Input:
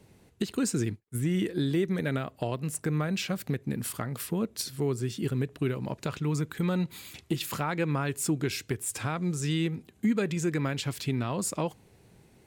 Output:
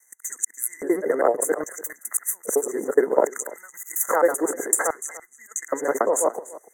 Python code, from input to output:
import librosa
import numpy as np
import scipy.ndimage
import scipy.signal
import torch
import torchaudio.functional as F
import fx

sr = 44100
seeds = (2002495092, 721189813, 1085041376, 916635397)

p1 = fx.local_reverse(x, sr, ms=139.0)
p2 = scipy.signal.sosfilt(scipy.signal.butter(4, 220.0, 'highpass', fs=sr, output='sos'), p1)
p3 = fx.over_compress(p2, sr, threshold_db=-37.0, ratio=-1.0)
p4 = p2 + (p3 * 10.0 ** (0.5 / 20.0))
p5 = fx.transient(p4, sr, attack_db=10, sustain_db=-4)
p6 = fx.filter_lfo_highpass(p5, sr, shape='square', hz=0.33, low_hz=500.0, high_hz=3200.0, q=2.9)
p7 = fx.stretch_grains(p6, sr, factor=0.54, grain_ms=182.0)
p8 = fx.vibrato(p7, sr, rate_hz=5.0, depth_cents=29.0)
p9 = fx.brickwall_bandstop(p8, sr, low_hz=2100.0, high_hz=5900.0)
p10 = p9 + fx.echo_single(p9, sr, ms=292, db=-18.5, dry=0)
y = p10 * 10.0 ** (4.0 / 20.0)